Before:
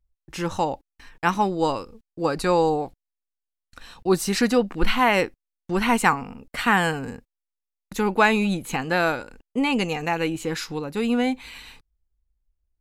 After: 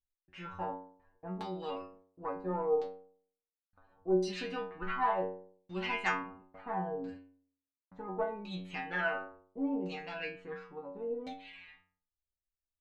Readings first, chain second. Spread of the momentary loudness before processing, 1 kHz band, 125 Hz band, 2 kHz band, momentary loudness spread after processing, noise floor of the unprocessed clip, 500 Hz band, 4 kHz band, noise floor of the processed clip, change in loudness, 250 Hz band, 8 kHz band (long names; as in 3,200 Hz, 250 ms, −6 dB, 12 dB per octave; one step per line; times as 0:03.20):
13 LU, −13.5 dB, −15.5 dB, −14.0 dB, 16 LU, −85 dBFS, −11.5 dB, −16.5 dB, below −85 dBFS, −13.5 dB, −15.5 dB, −24.5 dB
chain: auto-filter low-pass saw down 0.71 Hz 420–4,200 Hz
harmonic generator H 4 −18 dB, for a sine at 0.5 dBFS
stiff-string resonator 91 Hz, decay 0.6 s, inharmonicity 0.002
level −4 dB